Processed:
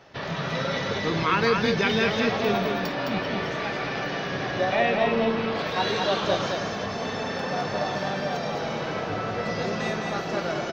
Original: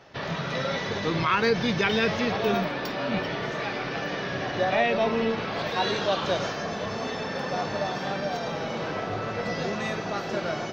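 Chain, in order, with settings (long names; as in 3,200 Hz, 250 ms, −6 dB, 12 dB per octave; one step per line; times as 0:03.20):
0:04.75–0:05.55: low-pass filter 5,300 Hz 12 dB per octave
single-tap delay 212 ms −4 dB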